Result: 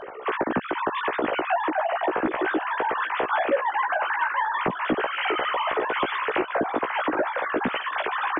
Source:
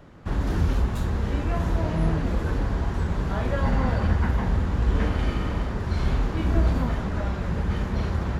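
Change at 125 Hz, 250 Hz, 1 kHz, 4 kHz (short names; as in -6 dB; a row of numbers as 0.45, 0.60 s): -23.0, -2.5, +10.5, +7.0 dB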